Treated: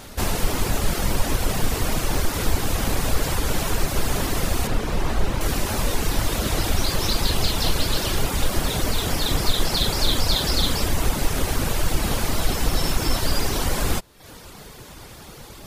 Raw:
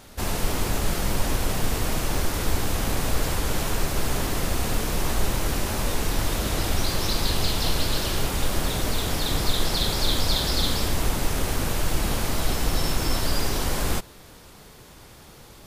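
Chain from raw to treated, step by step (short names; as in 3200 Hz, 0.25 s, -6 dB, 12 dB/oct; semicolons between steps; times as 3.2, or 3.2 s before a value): reverb removal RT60 0.63 s; in parallel at -2 dB: compressor, threshold -35 dBFS, peak gain reduction 18.5 dB; 4.67–5.41 on the sum: LPF 2700 Hz 6 dB/oct; gain +2.5 dB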